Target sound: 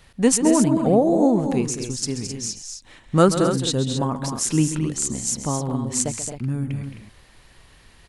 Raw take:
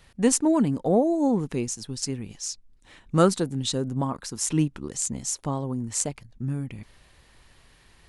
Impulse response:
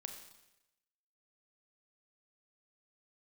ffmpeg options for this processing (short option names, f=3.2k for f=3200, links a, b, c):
-af "aecho=1:1:134.1|218.7|262.4:0.251|0.355|0.355,volume=3.5dB"